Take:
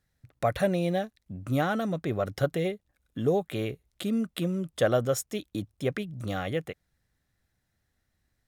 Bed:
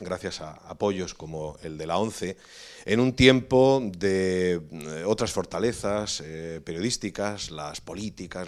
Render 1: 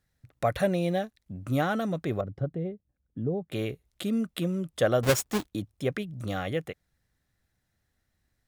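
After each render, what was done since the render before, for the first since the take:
0:02.21–0:03.52: resonant band-pass 120 Hz, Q 0.55
0:05.03–0:05.47: each half-wave held at its own peak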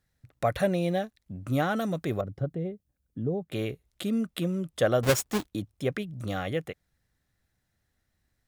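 0:01.76–0:03.44: high-shelf EQ 5,700 Hz +7.5 dB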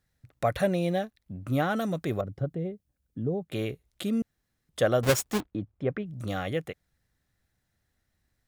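0:01.04–0:01.70: parametric band 7,100 Hz −4.5 dB 1.1 octaves
0:04.22–0:04.69: fill with room tone
0:05.40–0:06.06: low-pass filter 1,700 Hz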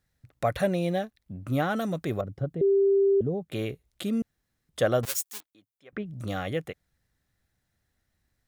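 0:02.61–0:03.21: beep over 394 Hz −18 dBFS
0:05.05–0:05.93: first difference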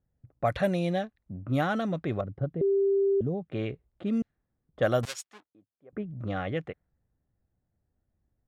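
low-pass that shuts in the quiet parts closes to 700 Hz, open at −20 dBFS
dynamic equaliser 440 Hz, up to −4 dB, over −34 dBFS, Q 2.7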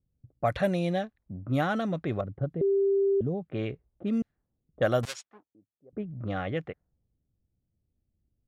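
low-pass that shuts in the quiet parts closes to 400 Hz, open at −26.5 dBFS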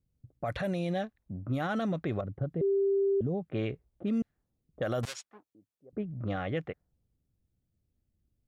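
brickwall limiter −23.5 dBFS, peak gain reduction 10.5 dB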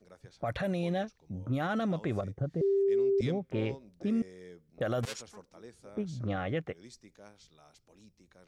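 mix in bed −25 dB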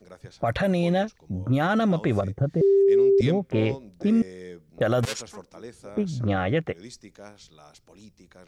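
level +9 dB

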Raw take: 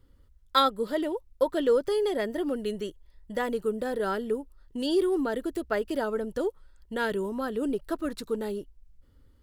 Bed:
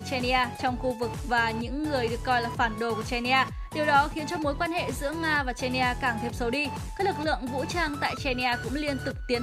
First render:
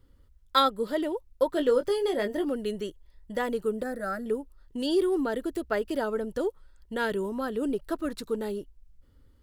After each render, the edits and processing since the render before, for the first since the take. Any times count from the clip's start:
0:01.50–0:02.45: double-tracking delay 20 ms −7.5 dB
0:03.83–0:04.26: phaser with its sweep stopped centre 630 Hz, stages 8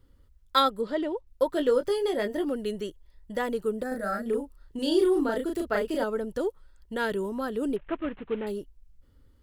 0:00.81–0:01.27: high-frequency loss of the air 88 metres
0:03.88–0:06.04: double-tracking delay 35 ms −2.5 dB
0:07.76–0:08.47: variable-slope delta modulation 16 kbit/s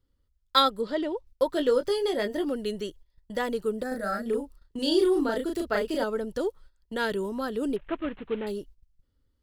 noise gate −47 dBFS, range −13 dB
parametric band 4,600 Hz +5.5 dB 1.1 octaves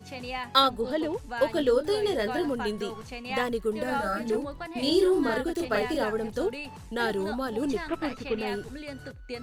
mix in bed −10 dB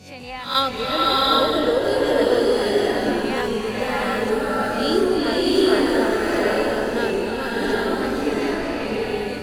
peak hold with a rise ahead of every peak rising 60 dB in 0.38 s
slow-attack reverb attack 750 ms, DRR −5.5 dB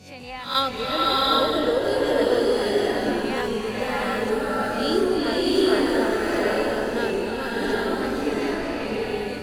level −2.5 dB

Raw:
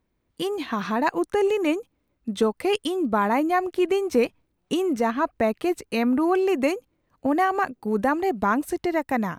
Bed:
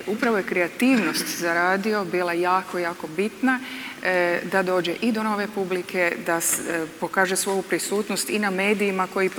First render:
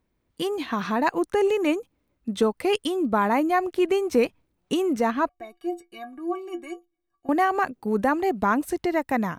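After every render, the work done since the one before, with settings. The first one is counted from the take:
0:05.29–0:07.29: stiff-string resonator 340 Hz, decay 0.2 s, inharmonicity 0.03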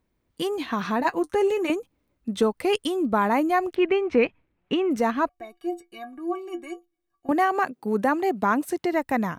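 0:01.00–0:01.70: notch comb filter 150 Hz
0:03.75–0:04.91: low-pass with resonance 2,400 Hz, resonance Q 1.8
0:07.31–0:08.93: high-pass filter 140 Hz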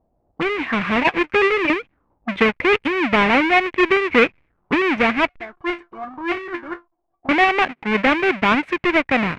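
each half-wave held at its own peak
envelope-controlled low-pass 700–2,300 Hz up, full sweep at −24 dBFS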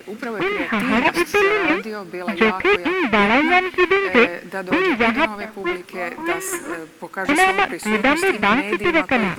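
mix in bed −6 dB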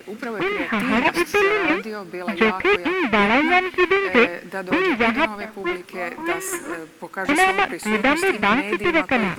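level −1.5 dB

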